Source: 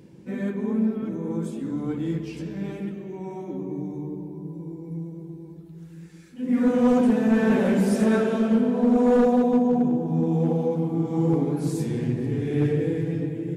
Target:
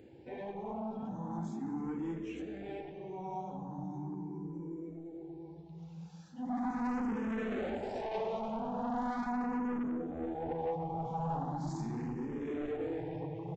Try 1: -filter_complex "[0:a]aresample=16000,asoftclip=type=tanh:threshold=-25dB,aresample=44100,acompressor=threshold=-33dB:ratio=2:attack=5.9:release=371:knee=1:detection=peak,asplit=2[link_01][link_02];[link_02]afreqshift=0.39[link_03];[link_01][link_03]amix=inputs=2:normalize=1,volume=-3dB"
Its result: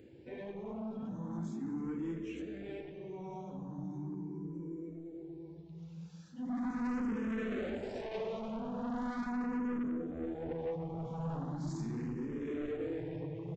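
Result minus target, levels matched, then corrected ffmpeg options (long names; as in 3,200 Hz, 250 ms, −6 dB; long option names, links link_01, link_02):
1,000 Hz band −6.5 dB
-filter_complex "[0:a]aresample=16000,asoftclip=type=tanh:threshold=-25dB,aresample=44100,acompressor=threshold=-33dB:ratio=2:attack=5.9:release=371:knee=1:detection=peak,equalizer=frequency=810:width_type=o:width=0.49:gain=12,asplit=2[link_01][link_02];[link_02]afreqshift=0.39[link_03];[link_01][link_03]amix=inputs=2:normalize=1,volume=-3dB"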